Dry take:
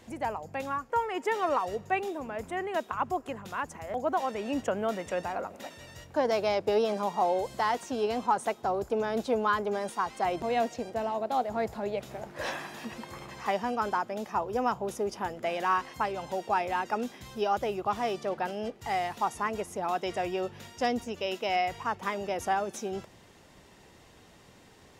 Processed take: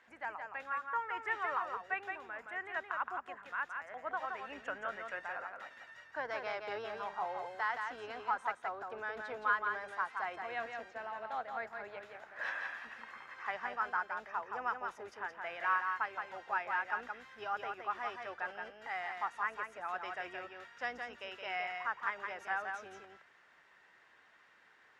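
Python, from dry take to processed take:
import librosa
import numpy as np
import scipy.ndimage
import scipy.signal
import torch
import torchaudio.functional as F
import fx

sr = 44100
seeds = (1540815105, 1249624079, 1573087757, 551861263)

y = fx.octave_divider(x, sr, octaves=2, level_db=-2.0)
y = fx.bandpass_q(y, sr, hz=1600.0, q=2.8)
y = y + 10.0 ** (-5.0 / 20.0) * np.pad(y, (int(170 * sr / 1000.0), 0))[:len(y)]
y = y * librosa.db_to_amplitude(1.0)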